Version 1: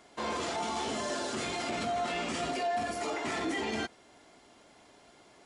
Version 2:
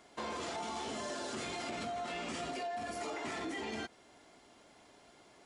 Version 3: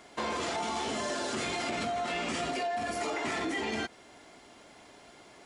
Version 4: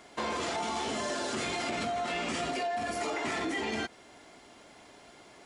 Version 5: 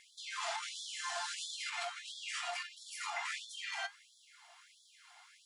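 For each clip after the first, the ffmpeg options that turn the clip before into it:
ffmpeg -i in.wav -af "acompressor=threshold=-34dB:ratio=6,volume=-2.5dB" out.wav
ffmpeg -i in.wav -af "equalizer=frequency=2100:width=1.5:gain=2,volume=6.5dB" out.wav
ffmpeg -i in.wav -af anull out.wav
ffmpeg -i in.wav -af "flanger=delay=7.5:depth=4:regen=70:speed=0.44:shape=sinusoidal,afftfilt=real='re*gte(b*sr/1024,640*pow(3300/640,0.5+0.5*sin(2*PI*1.5*pts/sr)))':imag='im*gte(b*sr/1024,640*pow(3300/640,0.5+0.5*sin(2*PI*1.5*pts/sr)))':win_size=1024:overlap=0.75,volume=1.5dB" out.wav

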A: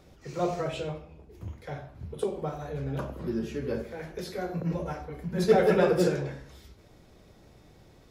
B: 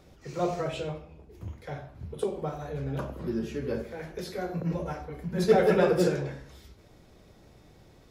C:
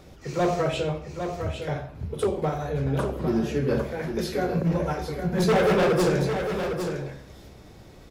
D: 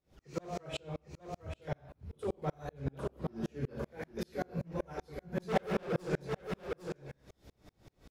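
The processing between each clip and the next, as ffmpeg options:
ffmpeg -i in.wav -af anull out.wav
ffmpeg -i in.wav -filter_complex "[0:a]asoftclip=type=hard:threshold=-25dB,asplit=2[link_01][link_02];[link_02]aecho=0:1:805:0.422[link_03];[link_01][link_03]amix=inputs=2:normalize=0,volume=7dB" out.wav
ffmpeg -i in.wav -af "aeval=exprs='val(0)*pow(10,-37*if(lt(mod(-5.2*n/s,1),2*abs(-5.2)/1000),1-mod(-5.2*n/s,1)/(2*abs(-5.2)/1000),(mod(-5.2*n/s,1)-2*abs(-5.2)/1000)/(1-2*abs(-5.2)/1000))/20)':channel_layout=same,volume=-4dB" out.wav

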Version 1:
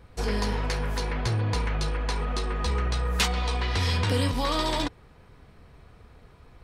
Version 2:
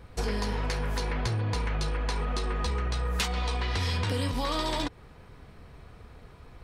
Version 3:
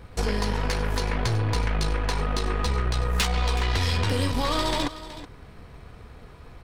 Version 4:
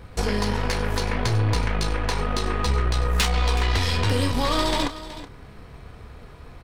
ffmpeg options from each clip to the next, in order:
ffmpeg -i in.wav -af "acompressor=threshold=-29dB:ratio=4,volume=2.5dB" out.wav
ffmpeg -i in.wav -af "aeval=exprs='0.15*(cos(1*acos(clip(val(0)/0.15,-1,1)))-cos(1*PI/2))+0.00944*(cos(8*acos(clip(val(0)/0.15,-1,1)))-cos(8*PI/2))':channel_layout=same,aecho=1:1:373:0.188,volume=4dB" out.wav
ffmpeg -i in.wav -filter_complex "[0:a]asplit=2[link_01][link_02];[link_02]adelay=29,volume=-11.5dB[link_03];[link_01][link_03]amix=inputs=2:normalize=0,volume=2dB" out.wav

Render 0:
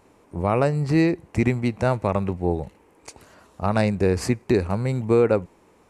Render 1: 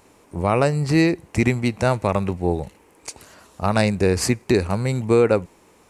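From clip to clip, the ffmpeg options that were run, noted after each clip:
ffmpeg -i in.wav -af "highshelf=frequency=2600:gain=8.5,volume=1.5dB" out.wav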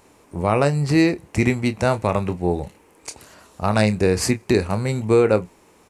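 ffmpeg -i in.wav -filter_complex "[0:a]asplit=2[link_01][link_02];[link_02]adelay=28,volume=-11.5dB[link_03];[link_01][link_03]amix=inputs=2:normalize=0" out.wav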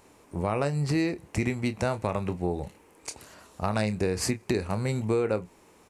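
ffmpeg -i in.wav -af "acompressor=threshold=-21dB:ratio=3,volume=-3.5dB" out.wav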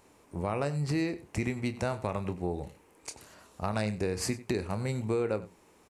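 ffmpeg -i in.wav -filter_complex "[0:a]asplit=2[link_01][link_02];[link_02]adelay=93.29,volume=-17dB,highshelf=frequency=4000:gain=-2.1[link_03];[link_01][link_03]amix=inputs=2:normalize=0,volume=-4dB" out.wav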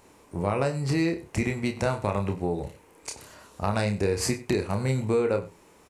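ffmpeg -i in.wav -filter_complex "[0:a]asplit=2[link_01][link_02];[link_02]adelay=30,volume=-6.5dB[link_03];[link_01][link_03]amix=inputs=2:normalize=0,volume=4.5dB" out.wav

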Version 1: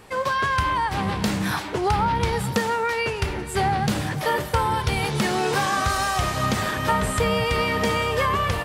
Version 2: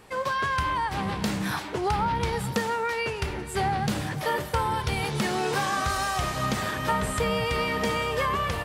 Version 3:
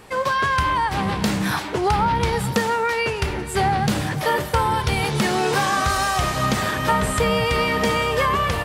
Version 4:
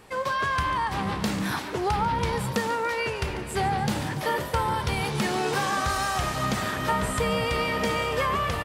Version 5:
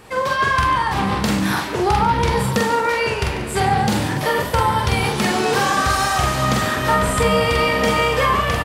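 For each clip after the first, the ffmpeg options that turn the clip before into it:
ffmpeg -i in.wav -af "bandreject=frequency=50:width_type=h:width=6,bandreject=frequency=100:width_type=h:width=6,volume=-4dB" out.wav
ffmpeg -i in.wav -af "acontrast=64" out.wav
ffmpeg -i in.wav -filter_complex "[0:a]asplit=8[link_01][link_02][link_03][link_04][link_05][link_06][link_07][link_08];[link_02]adelay=143,afreqshift=61,volume=-14dB[link_09];[link_03]adelay=286,afreqshift=122,volume=-18.3dB[link_10];[link_04]adelay=429,afreqshift=183,volume=-22.6dB[link_11];[link_05]adelay=572,afreqshift=244,volume=-26.9dB[link_12];[link_06]adelay=715,afreqshift=305,volume=-31.2dB[link_13];[link_07]adelay=858,afreqshift=366,volume=-35.5dB[link_14];[link_08]adelay=1001,afreqshift=427,volume=-39.8dB[link_15];[link_01][link_09][link_10][link_11][link_12][link_13][link_14][link_15]amix=inputs=8:normalize=0,volume=-6dB" out.wav
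ffmpeg -i in.wav -filter_complex "[0:a]asplit=2[link_01][link_02];[link_02]adelay=45,volume=-3dB[link_03];[link_01][link_03]amix=inputs=2:normalize=0,volume=6.5dB" out.wav

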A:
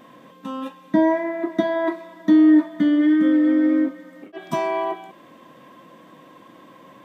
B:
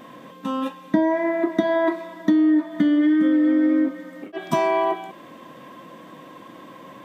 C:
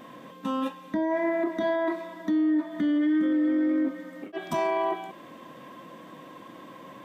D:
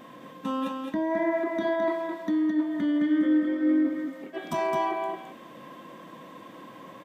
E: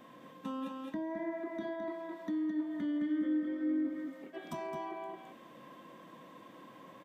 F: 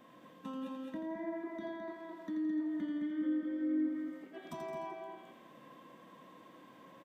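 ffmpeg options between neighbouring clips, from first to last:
ffmpeg -i in.wav -af "acompressor=threshold=-20dB:ratio=6,volume=4.5dB" out.wav
ffmpeg -i in.wav -af "alimiter=limit=-16dB:level=0:latency=1:release=16,volume=-3dB" out.wav
ffmpeg -i in.wav -af "aecho=1:1:214:0.562,volume=-1dB" out.wav
ffmpeg -i in.wav -filter_complex "[0:a]acrossover=split=340[link_01][link_02];[link_02]acompressor=threshold=-36dB:ratio=2[link_03];[link_01][link_03]amix=inputs=2:normalize=0,volume=-8dB" out.wav
ffmpeg -i in.wav -af "aecho=1:1:84|168|252|336|420|504:0.447|0.228|0.116|0.0593|0.0302|0.0154,volume=-4dB" out.wav

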